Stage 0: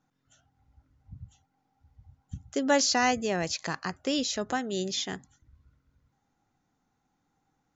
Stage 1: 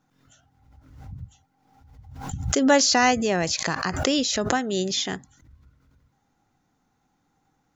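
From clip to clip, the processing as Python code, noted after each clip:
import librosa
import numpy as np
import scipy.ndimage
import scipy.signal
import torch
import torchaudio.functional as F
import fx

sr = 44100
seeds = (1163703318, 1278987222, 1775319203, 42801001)

y = fx.pre_swell(x, sr, db_per_s=63.0)
y = F.gain(torch.from_numpy(y), 5.5).numpy()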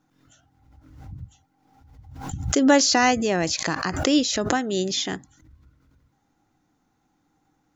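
y = fx.peak_eq(x, sr, hz=310.0, db=8.0, octaves=0.23)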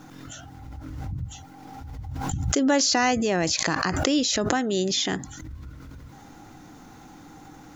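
y = fx.env_flatten(x, sr, amount_pct=50)
y = F.gain(torch.from_numpy(y), -5.5).numpy()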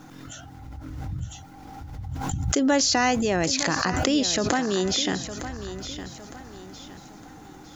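y = fx.echo_feedback(x, sr, ms=910, feedback_pct=37, wet_db=-12.0)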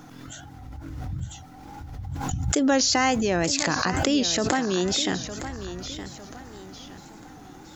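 y = fx.wow_flutter(x, sr, seeds[0], rate_hz=2.1, depth_cents=81.0)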